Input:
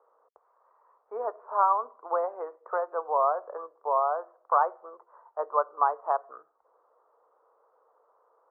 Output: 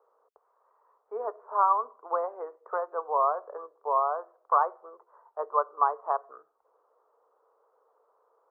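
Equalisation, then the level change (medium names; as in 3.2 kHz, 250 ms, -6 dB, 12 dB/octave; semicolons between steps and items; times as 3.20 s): peaking EQ 420 Hz +5.5 dB 0.26 oct; dynamic bell 1.1 kHz, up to +5 dB, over -39 dBFS, Q 3.8; -3.0 dB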